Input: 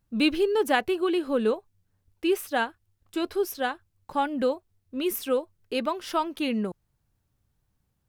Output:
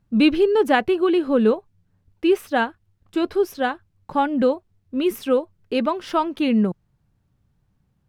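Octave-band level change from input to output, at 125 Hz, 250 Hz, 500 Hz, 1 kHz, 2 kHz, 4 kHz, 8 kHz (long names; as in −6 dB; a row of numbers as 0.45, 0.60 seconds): can't be measured, +8.0 dB, +6.0 dB, +5.5 dB, +4.0 dB, +2.0 dB, −3.5 dB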